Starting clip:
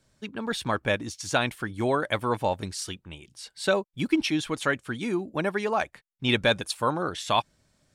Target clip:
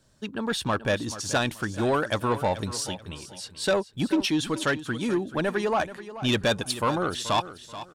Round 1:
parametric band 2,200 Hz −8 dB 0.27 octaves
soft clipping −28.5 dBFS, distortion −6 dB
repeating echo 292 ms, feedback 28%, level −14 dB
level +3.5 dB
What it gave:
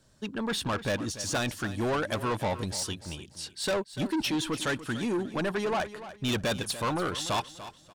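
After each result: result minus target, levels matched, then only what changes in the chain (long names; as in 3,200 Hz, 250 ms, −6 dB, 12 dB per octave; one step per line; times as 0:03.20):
echo 140 ms early; soft clipping: distortion +6 dB
change: repeating echo 432 ms, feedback 28%, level −14 dB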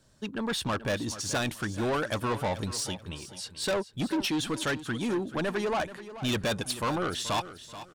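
soft clipping: distortion +6 dB
change: soft clipping −20.5 dBFS, distortion −13 dB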